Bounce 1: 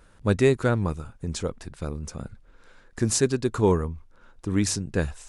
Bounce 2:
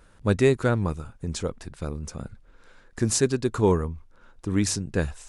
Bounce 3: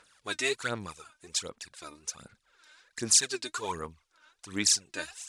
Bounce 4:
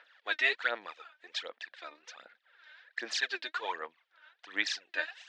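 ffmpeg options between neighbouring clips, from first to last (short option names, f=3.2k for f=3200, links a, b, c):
-af anull
-af "aphaser=in_gain=1:out_gain=1:delay=3.3:decay=0.7:speed=1.3:type=sinusoidal,bandpass=f=5.3k:t=q:w=0.64:csg=0,volume=2.5dB"
-af "highpass=f=390:w=0.5412,highpass=f=390:w=1.3066,equalizer=f=400:t=q:w=4:g=-8,equalizer=f=690:t=q:w=4:g=3,equalizer=f=1.1k:t=q:w=4:g=-4,equalizer=f=1.8k:t=q:w=4:g=9,equalizer=f=3.2k:t=q:w=4:g=3,lowpass=f=3.8k:w=0.5412,lowpass=f=3.8k:w=1.3066"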